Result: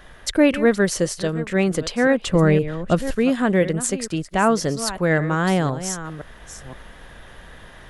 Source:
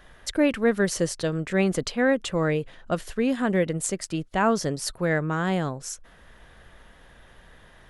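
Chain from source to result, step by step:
delay that plays each chunk backwards 518 ms, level −13 dB
speech leveller 2 s
0:02.27–0:03.15: low-shelf EQ 340 Hz +8 dB
level +3.5 dB

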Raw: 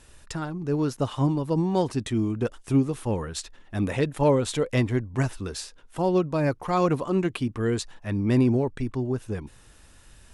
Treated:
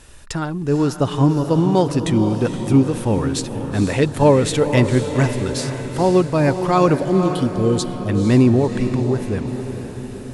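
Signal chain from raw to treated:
time-frequency box erased 0:07.00–0:08.09, 870–2,900 Hz
feedback delay with all-pass diffusion 489 ms, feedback 57%, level −8.5 dB
level +7.5 dB

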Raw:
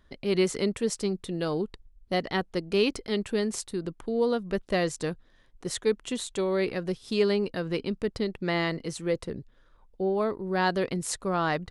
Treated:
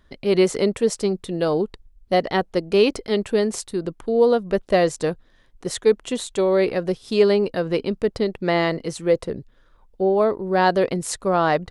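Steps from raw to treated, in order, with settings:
dynamic equaliser 600 Hz, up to +7 dB, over −40 dBFS, Q 1
level +4 dB

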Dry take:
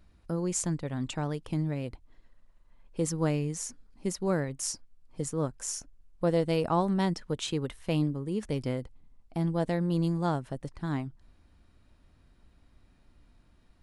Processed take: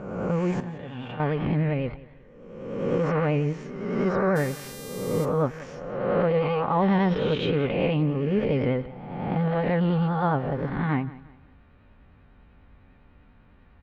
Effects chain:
peak hold with a rise ahead of every peak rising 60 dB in 1.28 s
low-pass filter 2,700 Hz 24 dB per octave
low-shelf EQ 190 Hz −4 dB
brickwall limiter −21.5 dBFS, peak gain reduction 9.5 dB
notch comb filter 330 Hz
pitch vibrato 10 Hz 52 cents
0:00.60–0:01.20: tuned comb filter 120 Hz, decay 0.79 s, harmonics all, mix 80%
0:04.35–0:05.24: hum with harmonics 400 Hz, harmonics 36, −52 dBFS −1 dB per octave
repeating echo 177 ms, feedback 35%, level −18.5 dB
level +8.5 dB

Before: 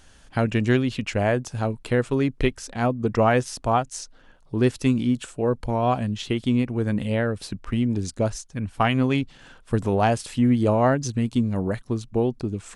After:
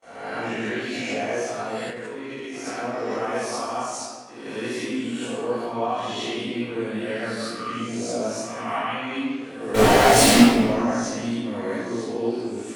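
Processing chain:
peak hold with a rise ahead of every peak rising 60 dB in 0.96 s
noise gate with hold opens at −32 dBFS
low-shelf EQ 420 Hz −5 dB
brickwall limiter −17 dBFS, peak gain reduction 12 dB
high-pass filter 260 Hz 12 dB per octave
0:09.74–0:10.42: fuzz pedal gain 47 dB, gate −44 dBFS
convolution reverb RT60 1.6 s, pre-delay 3 ms, DRR −10 dB
chorus effect 2.1 Hz, delay 16.5 ms, depth 2.2 ms
0:01.90–0:02.67: output level in coarse steps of 12 dB
0:07.40–0:07.89: parametric band 1,200 Hz +11.5 dB 0.24 octaves
level −10 dB

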